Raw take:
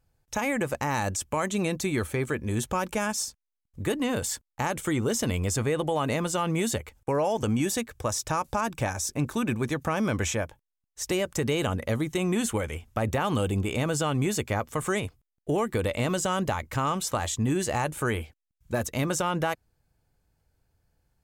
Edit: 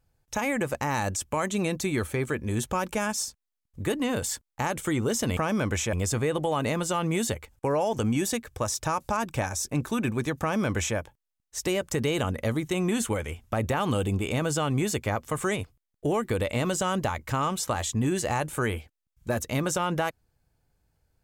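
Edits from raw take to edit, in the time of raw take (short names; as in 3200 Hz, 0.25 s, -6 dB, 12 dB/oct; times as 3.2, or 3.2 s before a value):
9.85–10.41 copy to 5.37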